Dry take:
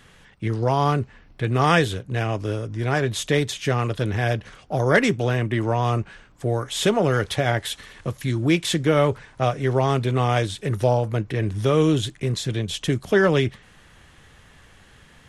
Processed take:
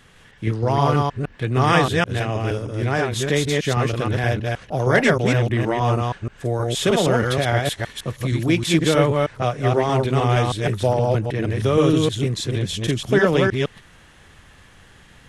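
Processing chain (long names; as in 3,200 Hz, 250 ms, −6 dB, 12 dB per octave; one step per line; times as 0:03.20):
delay that plays each chunk backwards 157 ms, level −1.5 dB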